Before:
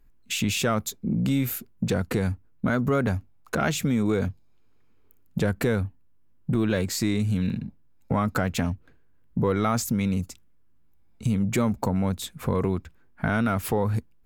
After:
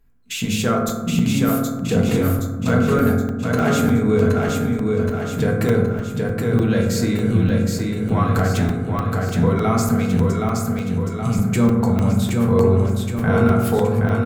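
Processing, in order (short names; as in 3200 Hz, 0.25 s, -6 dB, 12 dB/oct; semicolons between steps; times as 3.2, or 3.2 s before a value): feedback echo 0.771 s, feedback 54%, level -3.5 dB; reverb RT60 1.2 s, pre-delay 3 ms, DRR -1.5 dB; crackling interface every 0.30 s, samples 128, zero, from 0.89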